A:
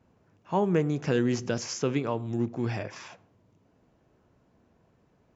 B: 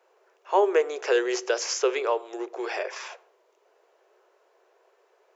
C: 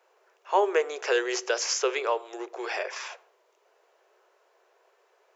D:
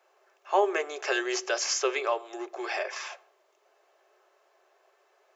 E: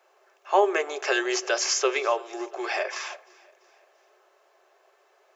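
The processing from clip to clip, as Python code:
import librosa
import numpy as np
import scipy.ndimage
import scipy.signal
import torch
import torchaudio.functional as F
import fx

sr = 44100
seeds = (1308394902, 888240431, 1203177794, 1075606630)

y1 = scipy.signal.sosfilt(scipy.signal.cheby1(6, 1.0, 380.0, 'highpass', fs=sr, output='sos'), x)
y1 = F.gain(torch.from_numpy(y1), 7.0).numpy()
y2 = fx.low_shelf(y1, sr, hz=420.0, db=-10.0)
y2 = F.gain(torch.from_numpy(y2), 1.5).numpy()
y3 = fx.notch_comb(y2, sr, f0_hz=480.0)
y3 = F.gain(torch.from_numpy(y3), 1.0).numpy()
y4 = fx.echo_feedback(y3, sr, ms=340, feedback_pct=50, wet_db=-24)
y4 = F.gain(torch.from_numpy(y4), 3.5).numpy()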